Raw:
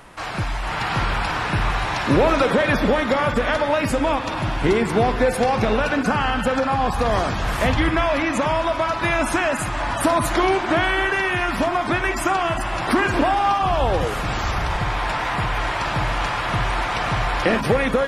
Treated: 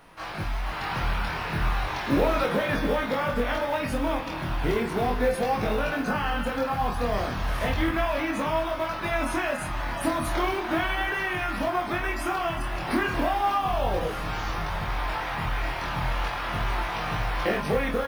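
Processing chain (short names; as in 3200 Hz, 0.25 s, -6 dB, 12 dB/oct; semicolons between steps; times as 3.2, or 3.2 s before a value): notches 60/120 Hz; companded quantiser 6-bit; bell 7500 Hz -10.5 dB 0.26 oct; doubler 25 ms -5.5 dB; chorus 0.35 Hz, delay 18.5 ms, depth 6.1 ms; gain -5 dB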